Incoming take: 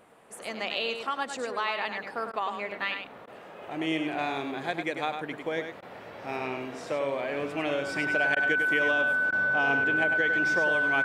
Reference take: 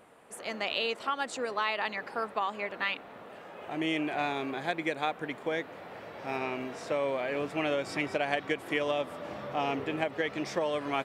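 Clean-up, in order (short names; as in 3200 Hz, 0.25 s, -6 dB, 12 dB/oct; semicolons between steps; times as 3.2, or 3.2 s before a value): notch 1500 Hz, Q 30; interpolate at 2.32/3.26/5.81/8.35/9.31, 13 ms; inverse comb 0.1 s -7 dB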